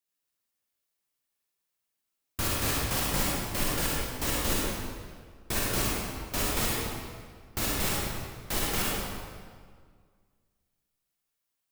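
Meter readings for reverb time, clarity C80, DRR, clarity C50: 1.8 s, -1.0 dB, -5.0 dB, -3.5 dB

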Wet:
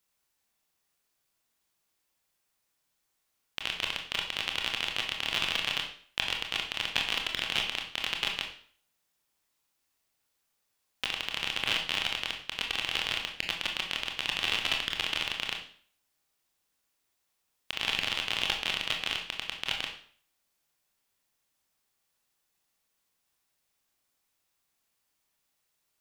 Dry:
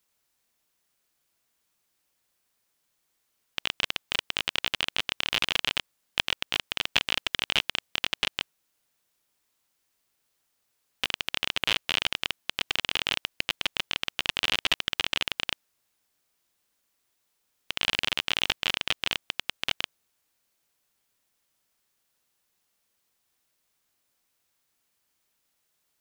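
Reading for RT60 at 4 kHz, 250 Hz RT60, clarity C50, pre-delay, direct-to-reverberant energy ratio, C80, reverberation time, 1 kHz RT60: 0.45 s, 0.50 s, 6.5 dB, 23 ms, 1.5 dB, 11.0 dB, 0.50 s, 0.50 s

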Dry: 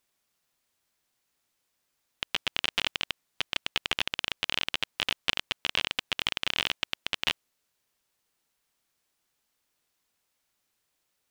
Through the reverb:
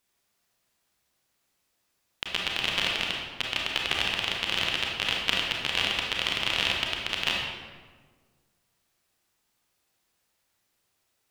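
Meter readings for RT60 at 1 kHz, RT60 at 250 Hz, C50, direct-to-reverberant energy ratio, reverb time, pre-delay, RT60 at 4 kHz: 1.4 s, 1.9 s, 0.5 dB, -1.5 dB, 1.5 s, 28 ms, 0.95 s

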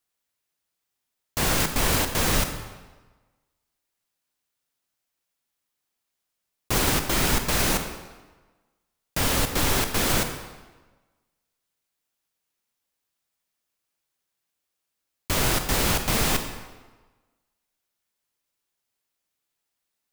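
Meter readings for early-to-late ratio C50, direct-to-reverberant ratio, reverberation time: 7.5 dB, 6.5 dB, 1.3 s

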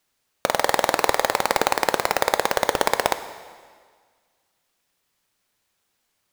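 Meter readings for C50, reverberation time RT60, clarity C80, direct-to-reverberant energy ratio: 12.0 dB, 1.7 s, 13.0 dB, 10.0 dB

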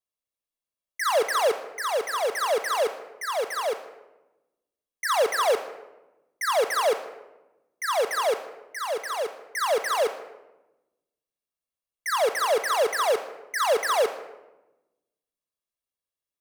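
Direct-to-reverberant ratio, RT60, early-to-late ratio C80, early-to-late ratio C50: 8.5 dB, 1.0 s, 12.5 dB, 11.0 dB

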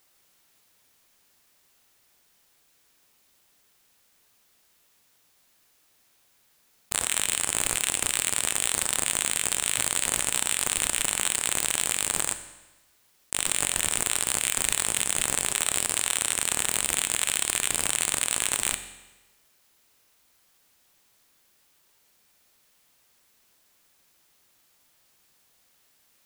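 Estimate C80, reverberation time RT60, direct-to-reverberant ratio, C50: 13.0 dB, 1.1 s, 9.0 dB, 11.0 dB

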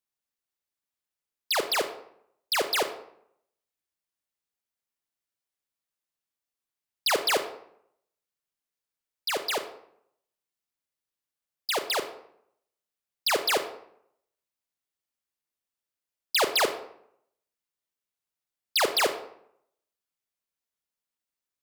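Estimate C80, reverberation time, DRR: 13.5 dB, 0.70 s, 7.5 dB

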